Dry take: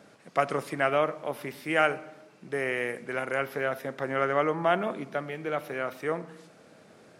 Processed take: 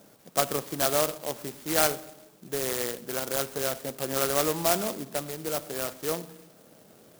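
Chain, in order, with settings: clock jitter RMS 0.14 ms

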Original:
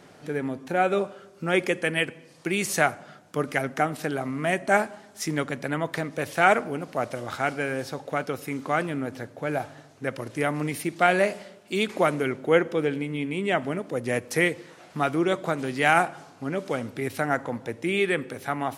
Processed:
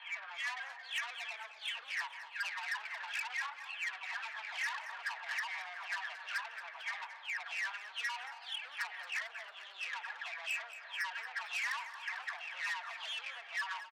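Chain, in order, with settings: spectral delay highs early, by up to 0.951 s; inverse Chebyshev low-pass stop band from 7200 Hz, stop band 70 dB; compressor 6:1, threshold -35 dBFS, peak gain reduction 18 dB; comb 1.6 ms, depth 38%; soft clip -39 dBFS, distortion -9 dB; HPF 880 Hz 24 dB/oct; frequency-shifting echo 0.303 s, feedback 59%, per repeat -31 Hz, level -13 dB; speed mistake 33 rpm record played at 45 rpm; gain +7 dB

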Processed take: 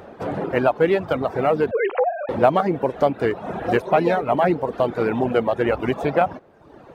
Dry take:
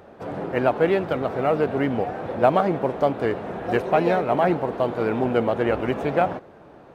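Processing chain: 1.71–2.29 sine-wave speech; in parallel at +0.5 dB: compressor, threshold -26 dBFS, peak gain reduction 13.5 dB; on the sum: reverb removal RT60 0.99 s

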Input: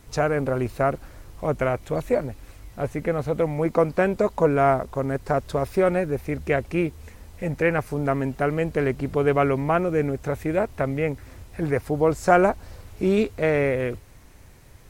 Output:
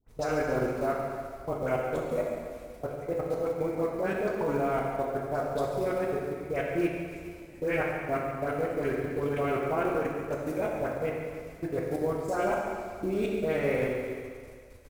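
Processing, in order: bell 1800 Hz -3 dB 0.25 oct; in parallel at -7.5 dB: soft clip -11.5 dBFS, distortion -20 dB; on the sum: bell 130 Hz -5 dB 1.2 oct; de-hum 89.3 Hz, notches 30; dispersion highs, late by 90 ms, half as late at 1300 Hz; level quantiser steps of 23 dB; on a send: feedback echo 0.14 s, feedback 53%, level -12 dB; on the sum: plate-style reverb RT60 1.9 s, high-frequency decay 0.95×, DRR -1.5 dB; short-mantissa float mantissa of 4-bit; gain -7.5 dB

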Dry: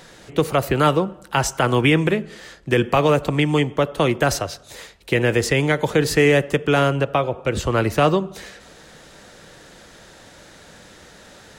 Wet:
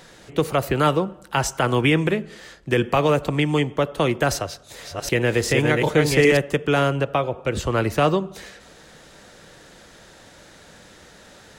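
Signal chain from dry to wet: 4.32–6.37 reverse delay 0.385 s, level -2.5 dB; gain -2 dB

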